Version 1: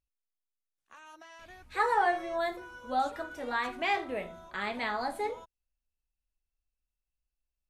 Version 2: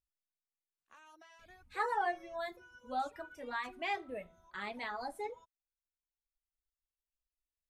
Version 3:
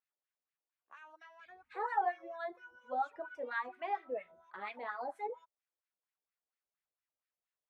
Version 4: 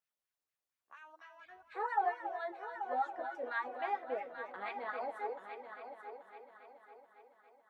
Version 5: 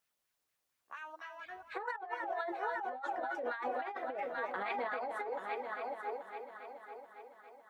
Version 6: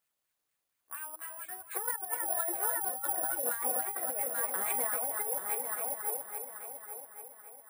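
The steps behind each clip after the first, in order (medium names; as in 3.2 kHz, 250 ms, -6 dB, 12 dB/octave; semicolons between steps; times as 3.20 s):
reverb removal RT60 2 s; trim -6.5 dB
in parallel at 0 dB: compression, threshold -44 dBFS, peak gain reduction 14 dB; on the sum: wah-wah 4.3 Hz 490–2100 Hz, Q 2; trim +2.5 dB
multi-head delay 278 ms, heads first and third, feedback 53%, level -10 dB
compressor with a negative ratio -43 dBFS, ratio -1; trim +4.5 dB
careless resampling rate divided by 4×, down filtered, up zero stuff; trim -1 dB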